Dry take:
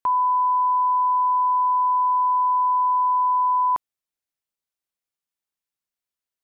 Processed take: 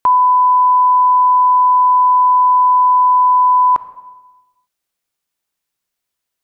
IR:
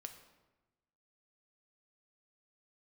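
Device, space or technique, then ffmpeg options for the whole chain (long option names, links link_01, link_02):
ducked reverb: -filter_complex "[0:a]asplit=3[link_01][link_02][link_03];[1:a]atrim=start_sample=2205[link_04];[link_02][link_04]afir=irnorm=-1:irlink=0[link_05];[link_03]apad=whole_len=283627[link_06];[link_05][link_06]sidechaincompress=threshold=-23dB:ratio=8:attack=9.4:release=138,volume=3.5dB[link_07];[link_01][link_07]amix=inputs=2:normalize=0,volume=6dB"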